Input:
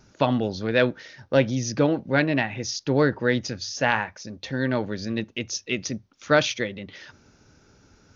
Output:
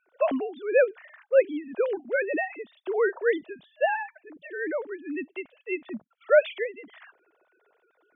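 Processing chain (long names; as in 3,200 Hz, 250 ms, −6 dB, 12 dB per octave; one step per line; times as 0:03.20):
three sine waves on the formant tracks
parametric band 650 Hz +6 dB 0.41 octaves
level −4.5 dB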